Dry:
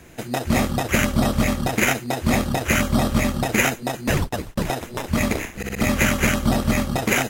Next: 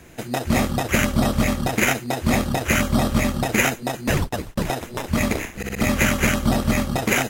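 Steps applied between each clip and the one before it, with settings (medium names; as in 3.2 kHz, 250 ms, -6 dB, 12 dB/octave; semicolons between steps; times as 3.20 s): no audible change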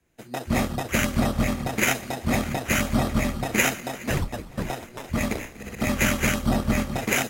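backward echo that repeats 544 ms, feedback 65%, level -14 dB; three bands expanded up and down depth 70%; trim -4 dB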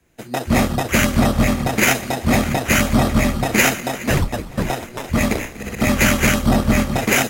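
saturation -14 dBFS, distortion -18 dB; trim +8.5 dB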